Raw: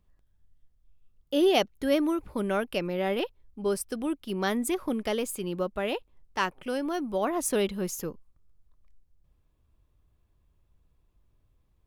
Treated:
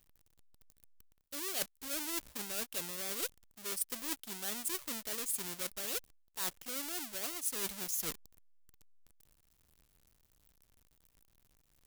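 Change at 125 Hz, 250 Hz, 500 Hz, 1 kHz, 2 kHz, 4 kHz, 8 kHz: −17.0, −19.5, −20.0, −15.5, −9.5, −5.5, +1.5 decibels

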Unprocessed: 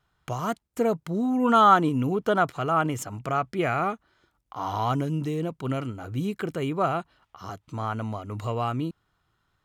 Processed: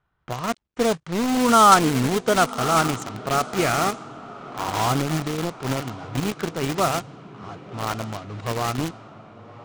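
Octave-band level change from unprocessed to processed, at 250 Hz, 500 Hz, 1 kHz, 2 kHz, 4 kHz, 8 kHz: +2.5, +3.0, +3.5, +5.5, +11.0, +15.5 decibels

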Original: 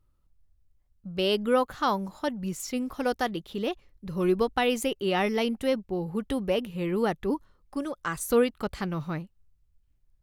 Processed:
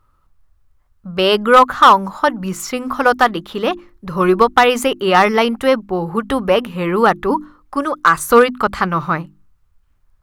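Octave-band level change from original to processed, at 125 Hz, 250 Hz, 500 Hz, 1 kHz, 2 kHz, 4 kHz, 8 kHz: +9.0, +9.0, +11.5, +18.5, +16.5, +12.0, +9.5 decibels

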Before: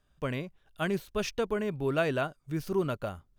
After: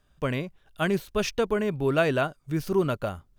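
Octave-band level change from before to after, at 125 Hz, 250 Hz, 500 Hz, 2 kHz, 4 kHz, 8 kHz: +5.0, +5.0, +5.0, +5.0, +5.0, +5.0 decibels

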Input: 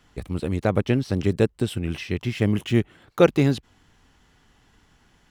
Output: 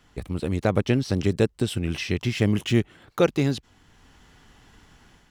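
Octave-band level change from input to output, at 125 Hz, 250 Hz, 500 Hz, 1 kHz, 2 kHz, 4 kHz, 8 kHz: −1.0, −1.0, −2.0, −2.0, 0.0, +2.5, +3.5 decibels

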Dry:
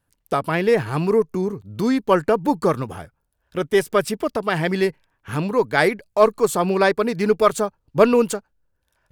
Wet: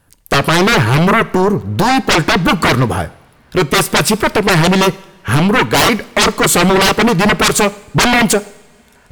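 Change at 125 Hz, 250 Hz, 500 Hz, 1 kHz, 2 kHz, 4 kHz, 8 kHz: +13.0, +9.0, +3.0, +9.5, +12.5, +18.5, +17.0 decibels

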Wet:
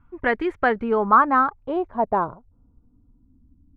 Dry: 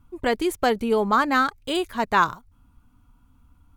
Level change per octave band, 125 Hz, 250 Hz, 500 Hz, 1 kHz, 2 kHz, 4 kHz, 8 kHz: −0.5 dB, −0.5 dB, +0.5 dB, +3.0 dB, 0.0 dB, below −10 dB, below −30 dB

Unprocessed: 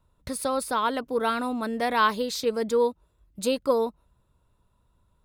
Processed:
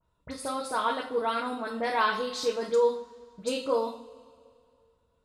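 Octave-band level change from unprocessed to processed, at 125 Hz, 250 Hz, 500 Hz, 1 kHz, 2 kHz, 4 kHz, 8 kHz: can't be measured, −7.0 dB, −2.0 dB, −3.0 dB, −2.5 dB, −2.5 dB, −6.0 dB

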